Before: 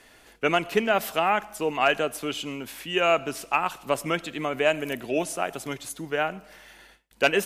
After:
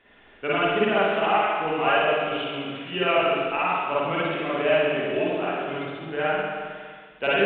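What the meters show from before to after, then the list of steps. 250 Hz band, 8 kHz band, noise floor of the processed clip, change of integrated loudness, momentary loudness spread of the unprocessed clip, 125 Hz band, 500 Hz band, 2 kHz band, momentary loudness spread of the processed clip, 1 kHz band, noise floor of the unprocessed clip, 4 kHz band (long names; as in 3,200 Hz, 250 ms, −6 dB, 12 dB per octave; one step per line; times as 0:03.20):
+2.0 dB, below −40 dB, −52 dBFS, +2.0 dB, 9 LU, +2.5 dB, +3.0 dB, +2.0 dB, 10 LU, +2.5 dB, −55 dBFS, +1.0 dB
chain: spring reverb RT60 1.8 s, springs 45/50 ms, chirp 25 ms, DRR −9.5 dB
level −7.5 dB
mu-law 64 kbit/s 8,000 Hz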